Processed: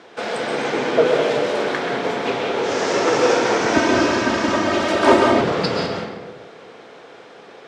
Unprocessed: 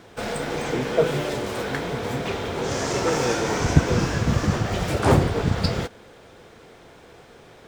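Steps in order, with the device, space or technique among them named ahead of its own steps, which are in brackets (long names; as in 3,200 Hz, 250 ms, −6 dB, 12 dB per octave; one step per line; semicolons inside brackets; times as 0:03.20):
supermarket ceiling speaker (band-pass filter 310–5,300 Hz; convolution reverb RT60 1.3 s, pre-delay 118 ms, DRR 1 dB)
0:03.73–0:05.41: comb filter 3.2 ms, depth 85%
level +4.5 dB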